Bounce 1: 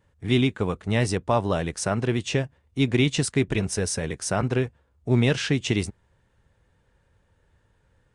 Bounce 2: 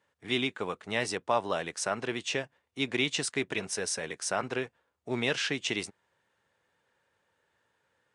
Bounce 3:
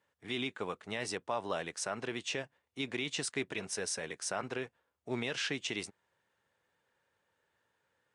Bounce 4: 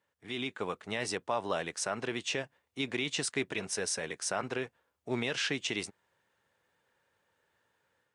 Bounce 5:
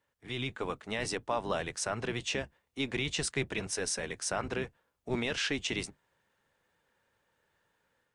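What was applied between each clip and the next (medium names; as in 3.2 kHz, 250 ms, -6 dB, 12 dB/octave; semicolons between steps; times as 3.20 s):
frequency weighting A; trim -3 dB
peak limiter -19.5 dBFS, peak gain reduction 6.5 dB; trim -4 dB
level rider gain up to 5 dB; trim -2 dB
octave divider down 1 oct, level -2 dB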